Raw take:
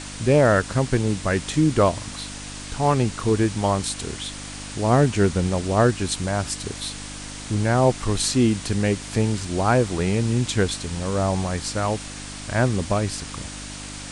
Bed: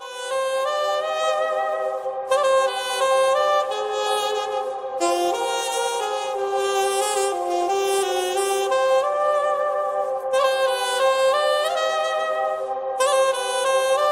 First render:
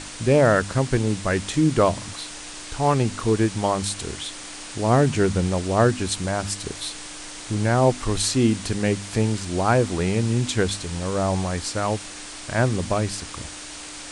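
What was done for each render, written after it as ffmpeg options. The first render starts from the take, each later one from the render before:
-af "bandreject=f=50:t=h:w=4,bandreject=f=100:t=h:w=4,bandreject=f=150:t=h:w=4,bandreject=f=200:t=h:w=4,bandreject=f=250:t=h:w=4"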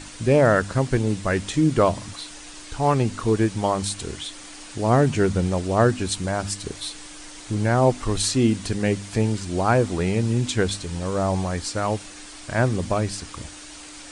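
-af "afftdn=nr=6:nf=-38"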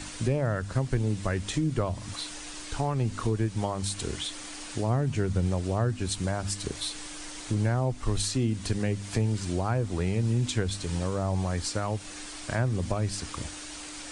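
-filter_complex "[0:a]acrossover=split=120[a][b];[b]acompressor=threshold=-28dB:ratio=5[c];[a][c]amix=inputs=2:normalize=0"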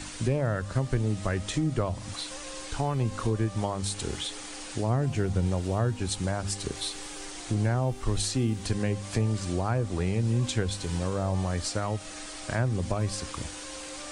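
-filter_complex "[1:a]volume=-27.5dB[a];[0:a][a]amix=inputs=2:normalize=0"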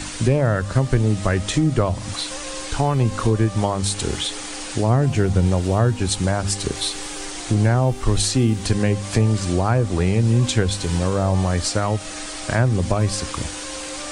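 -af "volume=9dB"

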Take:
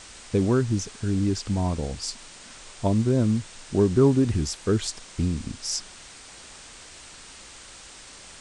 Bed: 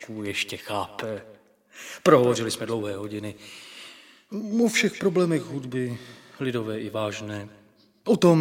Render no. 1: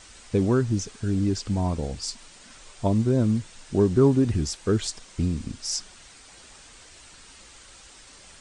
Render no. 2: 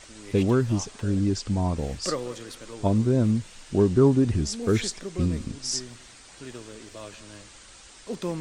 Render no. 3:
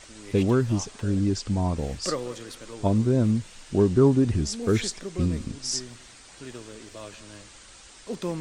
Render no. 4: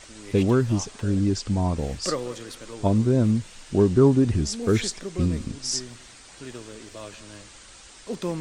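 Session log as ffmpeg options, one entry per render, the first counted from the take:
-af "afftdn=nr=6:nf=-46"
-filter_complex "[1:a]volume=-13.5dB[a];[0:a][a]amix=inputs=2:normalize=0"
-af anull
-af "volume=1.5dB"

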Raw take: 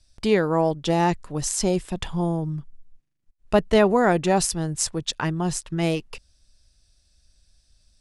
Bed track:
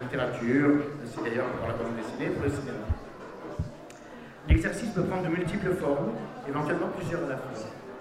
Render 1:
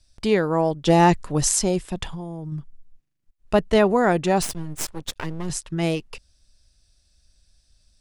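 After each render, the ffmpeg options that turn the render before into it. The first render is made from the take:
-filter_complex "[0:a]asplit=3[a][b][c];[a]afade=t=out:st=0.86:d=0.02[d];[b]acontrast=49,afade=t=in:st=0.86:d=0.02,afade=t=out:st=1.58:d=0.02[e];[c]afade=t=in:st=1.58:d=0.02[f];[d][e][f]amix=inputs=3:normalize=0,asettb=1/sr,asplit=3[g][h][i];[g]atrim=end=2.094[j];[h]atrim=start=2.09:end=2.52,asetpts=PTS-STARTPTS,afade=t=in:d=0.004:c=qsin,afade=t=out:st=0.426:d=0.004:c=qsin,acompressor=threshold=-29dB:ratio=6:attack=3.2:release=140:knee=1:detection=peak[k];[i]atrim=start=2.516[l];[j][k]acrossfade=d=0.004:c1=hsin:c2=qsin[m];[m][l]acrossfade=d=0.004:c1=qsin:c2=hsin,asettb=1/sr,asplit=3[n][o][p];[n]atrim=end=4.424[q];[o]atrim=start=4.42:end=5.5,asetpts=PTS-STARTPTS,afade=t=in:d=0.004:c=qsin,afade=t=out:st=1.076:d=0.004:c=qsin,aeval=exprs='max(val(0),0)':c=same[r];[p]atrim=start=5.496[s];[q][r]acrossfade=d=0.004:c1=hsin:c2=qsin[t];[t][s]acrossfade=d=0.004:c1=qsin:c2=hsin"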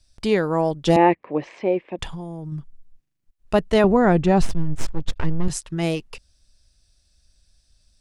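-filter_complex "[0:a]asettb=1/sr,asplit=3[a][b][c];[a]atrim=end=0.964[d];[b]atrim=start=0.96:end=1.99,asetpts=PTS-STARTPTS,afade=t=in:d=0.004:c=qsin,afade=t=out:st=1.026:d=0.004:c=qsin,highpass=300,equalizer=f=330:t=q:w=4:g=5,equalizer=f=520:t=q:w=4:g=6,equalizer=f=1.4k:t=q:w=4:g=-10,equalizer=f=2.3k:t=q:w=4:g=7,lowpass=f=2.4k:w=0.5412,lowpass=f=2.4k:w=1.3066[e];[c]atrim=start=1.986[f];[d][e]acrossfade=d=0.004:c1=hsin:c2=qsin[g];[g][f]acrossfade=d=0.004:c1=qsin:c2=hsin,asettb=1/sr,asplit=3[h][i][j];[h]atrim=end=3.844[k];[i]atrim=start=3.84:end=5.48,asetpts=PTS-STARTPTS,afade=t=in:d=0.004:c=qsin,afade=t=out:st=1.636:d=0.004:c=qsin,aemphasis=mode=reproduction:type=bsi[l];[j]atrim=start=5.476[m];[k][l]acrossfade=d=0.004:c1=hsin:c2=qsin[n];[n][m]acrossfade=d=0.004:c1=qsin:c2=hsin"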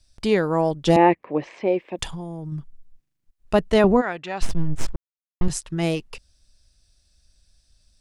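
-filter_complex "[0:a]asettb=1/sr,asplit=3[a][b][c];[a]atrim=end=1.674[d];[b]atrim=start=1.67:end=2.11,asetpts=PTS-STARTPTS,afade=t=in:d=0.004:c=qsin,afade=t=out:st=0.436:d=0.004:c=qsin,bass=f=250:g=-2,treble=f=4k:g=9[e];[c]atrim=start=2.106[f];[d][e]acrossfade=d=0.004:c1=hsin:c2=qsin[g];[g][f]acrossfade=d=0.004:c1=qsin:c2=hsin,asplit=3[h][i][j];[h]afade=t=out:st=4:d=0.02[k];[i]bandpass=f=2.7k:t=q:w=0.84,afade=t=in:st=4:d=0.02,afade=t=out:st=4.41:d=0.02[l];[j]afade=t=in:st=4.41:d=0.02[m];[k][l][m]amix=inputs=3:normalize=0,asplit=3[n][o][p];[n]atrim=end=4.96,asetpts=PTS-STARTPTS,afade=t=out:st=4.956:d=0.004:c=hsin[q];[o]atrim=start=4.96:end=5.41,asetpts=PTS-STARTPTS,volume=0[r];[p]atrim=start=5.41,asetpts=PTS-STARTPTS,afade=t=in:d=0.004:c=hsin[s];[q][r][s]concat=n=3:v=0:a=1"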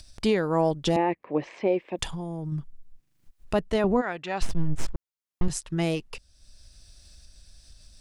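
-af "acompressor=mode=upward:threshold=-39dB:ratio=2.5,alimiter=limit=-13.5dB:level=0:latency=1:release=430"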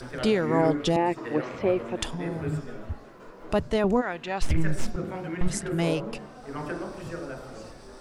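-filter_complex "[1:a]volume=-5dB[a];[0:a][a]amix=inputs=2:normalize=0"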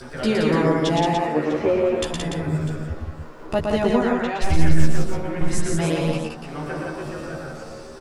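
-filter_complex "[0:a]asplit=2[a][b];[b]adelay=13,volume=-2.5dB[c];[a][c]amix=inputs=2:normalize=0,asplit=2[d][e];[e]aecho=0:1:115|172|291|649:0.668|0.668|0.473|0.141[f];[d][f]amix=inputs=2:normalize=0"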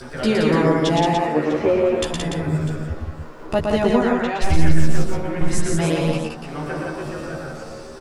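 -af "volume=2dB,alimiter=limit=-3dB:level=0:latency=1"

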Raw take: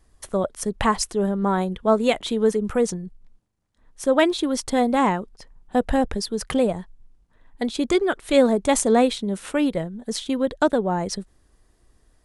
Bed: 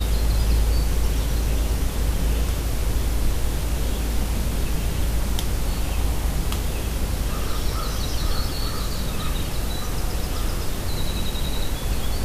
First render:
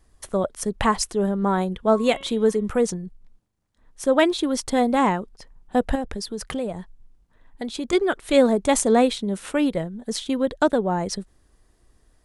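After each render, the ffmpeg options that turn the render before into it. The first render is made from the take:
-filter_complex "[0:a]asettb=1/sr,asplit=3[a][b][c];[a]atrim=end=1.854[d];[b]atrim=start=1.85:end=2.79,asetpts=PTS-STARTPTS,afade=t=in:d=0.004:c=qsin,afade=t=out:st=0.936:d=0.004:c=qsin,bandreject=f=273.9:t=h:w=4,bandreject=f=547.8:t=h:w=4,bandreject=f=821.7:t=h:w=4,bandreject=f=1.0956k:t=h:w=4,bandreject=f=1.3695k:t=h:w=4,bandreject=f=1.6434k:t=h:w=4,bandreject=f=1.9173k:t=h:w=4,bandreject=f=2.1912k:t=h:w=4,bandreject=f=2.4651k:t=h:w=4,bandreject=f=2.739k:t=h:w=4,bandreject=f=3.0129k:t=h:w=4,bandreject=f=3.2868k:t=h:w=4,bandreject=f=3.5607k:t=h:w=4,bandreject=f=3.8346k:t=h:w=4[e];[c]atrim=start=2.786[f];[d][e]acrossfade=d=0.004:c1=hsin:c2=qsin[g];[g][f]acrossfade=d=0.004:c1=qsin:c2=hsin,asettb=1/sr,asplit=3[h][i][j];[h]atrim=end=5.954[k];[i]atrim=start=5.95:end=7.93,asetpts=PTS-STARTPTS,afade=t=in:d=0.004:c=qsin,afade=t=out:st=1.976:d=0.004:c=qsin,acompressor=threshold=-29dB:ratio=2:attack=3.2:release=140:knee=1:detection=peak[l];[j]atrim=start=7.926[m];[k][l]acrossfade=d=0.004:c1=hsin:c2=qsin[n];[n][m]acrossfade=d=0.004:c1=qsin:c2=hsin"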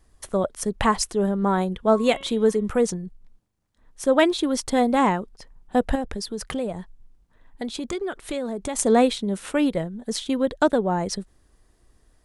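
-filter_complex "[0:a]asettb=1/sr,asplit=3[a][b][c];[a]atrim=end=7.724[d];[b]atrim=start=7.72:end=8.79,asetpts=PTS-STARTPTS,afade=t=in:d=0.004:c=qsin,afade=t=out:st=1.066:d=0.004:c=qsin,acompressor=threshold=-25dB:ratio=6:attack=3.2:release=140:knee=1:detection=peak[e];[c]atrim=start=8.786[f];[d][e]acrossfade=d=0.004:c1=hsin:c2=qsin[g];[g][f]acrossfade=d=0.004:c1=qsin:c2=hsin"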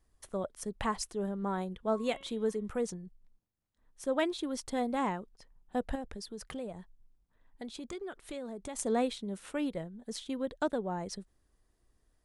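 -af "volume=-12.5dB"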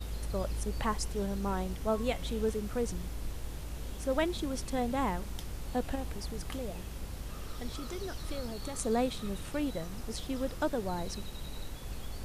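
-filter_complex "[1:a]volume=-16.5dB[a];[0:a][a]amix=inputs=2:normalize=0"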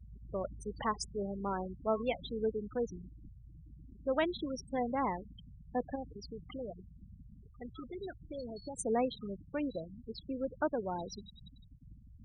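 -af "afftfilt=real='re*gte(hypot(re,im),0.0251)':imag='im*gte(hypot(re,im),0.0251)':win_size=1024:overlap=0.75,highpass=f=260:p=1"

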